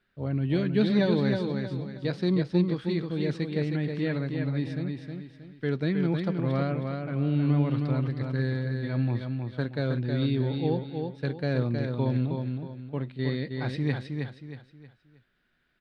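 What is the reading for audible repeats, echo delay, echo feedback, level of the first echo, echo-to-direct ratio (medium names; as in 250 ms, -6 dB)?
4, 316 ms, 35%, -5.0 dB, -4.5 dB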